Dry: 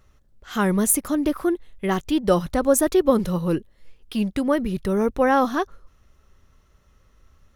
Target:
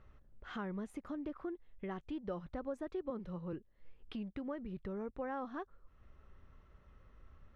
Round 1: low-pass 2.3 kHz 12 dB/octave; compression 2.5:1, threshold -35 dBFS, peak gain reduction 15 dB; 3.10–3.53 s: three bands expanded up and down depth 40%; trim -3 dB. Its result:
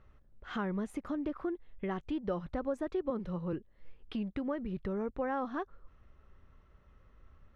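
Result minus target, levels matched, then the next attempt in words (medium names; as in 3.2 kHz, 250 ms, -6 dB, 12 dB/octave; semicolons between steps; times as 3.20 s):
compression: peak gain reduction -6.5 dB
low-pass 2.3 kHz 12 dB/octave; compression 2.5:1, threshold -45.5 dBFS, peak gain reduction 21.5 dB; 3.10–3.53 s: three bands expanded up and down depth 40%; trim -3 dB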